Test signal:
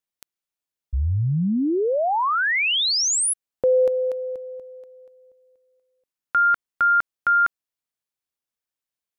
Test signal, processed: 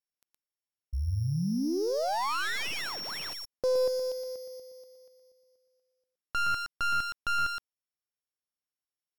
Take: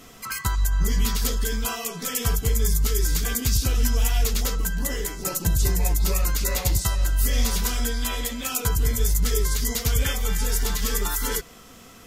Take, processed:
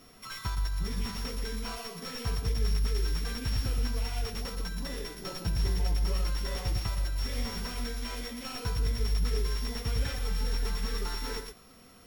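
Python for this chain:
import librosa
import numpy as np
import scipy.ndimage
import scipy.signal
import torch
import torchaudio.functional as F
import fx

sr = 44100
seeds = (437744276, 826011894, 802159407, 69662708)

y = np.r_[np.sort(x[:len(x) // 8 * 8].reshape(-1, 8), axis=1).ravel(), x[len(x) // 8 * 8:]]
y = y + 10.0 ** (-8.0 / 20.0) * np.pad(y, (int(118 * sr / 1000.0), 0))[:len(y)]
y = fx.slew_limit(y, sr, full_power_hz=200.0)
y = y * librosa.db_to_amplitude(-8.5)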